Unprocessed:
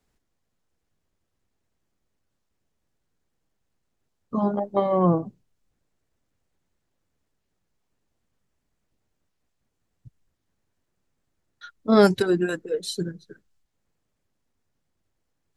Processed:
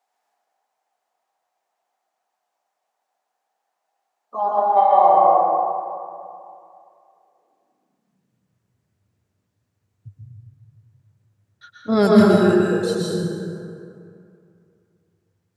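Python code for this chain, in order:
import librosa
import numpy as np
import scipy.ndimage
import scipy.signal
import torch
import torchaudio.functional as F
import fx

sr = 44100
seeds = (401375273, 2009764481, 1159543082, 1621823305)

y = fx.filter_sweep_highpass(x, sr, from_hz=760.0, to_hz=100.0, start_s=6.63, end_s=8.55, q=6.8)
y = fx.rev_plate(y, sr, seeds[0], rt60_s=2.5, hf_ratio=0.5, predelay_ms=105, drr_db=-5.0)
y = F.gain(torch.from_numpy(y), -3.0).numpy()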